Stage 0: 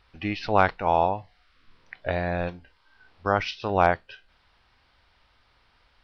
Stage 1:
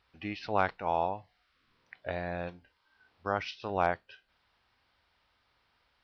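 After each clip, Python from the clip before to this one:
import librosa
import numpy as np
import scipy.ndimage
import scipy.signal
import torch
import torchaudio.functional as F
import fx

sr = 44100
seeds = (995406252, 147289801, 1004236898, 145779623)

y = fx.highpass(x, sr, hz=94.0, slope=6)
y = y * 10.0 ** (-8.0 / 20.0)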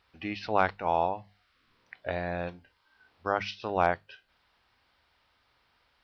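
y = fx.hum_notches(x, sr, base_hz=50, count=4)
y = y * 10.0 ** (3.0 / 20.0)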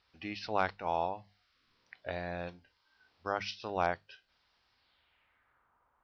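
y = fx.filter_sweep_lowpass(x, sr, from_hz=5500.0, to_hz=1100.0, start_s=4.7, end_s=5.76, q=2.4)
y = y * 10.0 ** (-6.0 / 20.0)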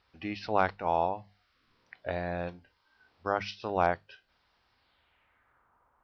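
y = fx.high_shelf(x, sr, hz=2500.0, db=-8.5)
y = y * 10.0 ** (5.5 / 20.0)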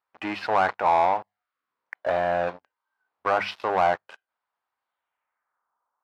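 y = fx.leveller(x, sr, passes=5)
y = fx.bandpass_q(y, sr, hz=1000.0, q=1.2)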